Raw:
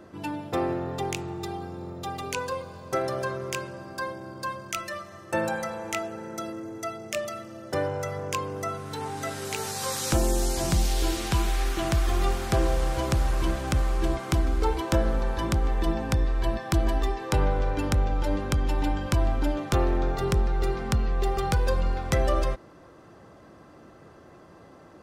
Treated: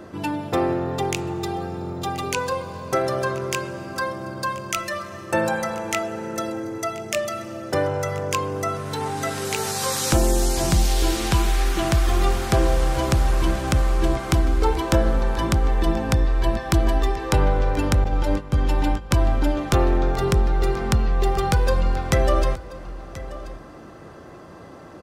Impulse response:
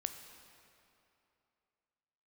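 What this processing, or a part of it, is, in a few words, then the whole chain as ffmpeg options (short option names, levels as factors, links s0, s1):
compressed reverb return: -filter_complex "[0:a]asettb=1/sr,asplit=3[s0][s1][s2];[s0]atrim=end=18.044[s3];[s1]atrim=start=18.04:end=19.11,asetpts=PTS-STARTPTS,afade=t=in:d=0.004:c=qsin,afade=t=out:st=1.066:d=0.004:c=qsin,agate=range=0.126:threshold=0.0562:ratio=16:detection=peak[s4];[s2]atrim=start=19.106[s5];[s3][s4]acrossfade=d=0.004:c1=hsin:c2=qsin[s6];[s6][s5]acrossfade=d=0.004:c1=qsin:c2=hsin,aecho=1:1:1032:0.106,asplit=2[s7][s8];[1:a]atrim=start_sample=2205[s9];[s8][s9]afir=irnorm=-1:irlink=0,acompressor=threshold=0.0158:ratio=6,volume=0.708[s10];[s7][s10]amix=inputs=2:normalize=0,volume=1.58"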